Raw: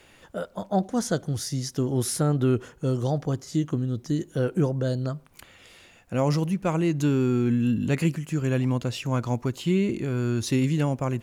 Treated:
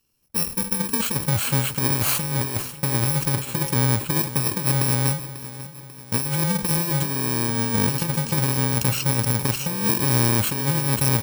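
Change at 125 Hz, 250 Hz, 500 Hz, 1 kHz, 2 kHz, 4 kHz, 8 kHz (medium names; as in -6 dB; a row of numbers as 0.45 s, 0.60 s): +2.5 dB, -2.0 dB, -3.0 dB, +5.0 dB, +8.5 dB, +9.5 dB, +12.5 dB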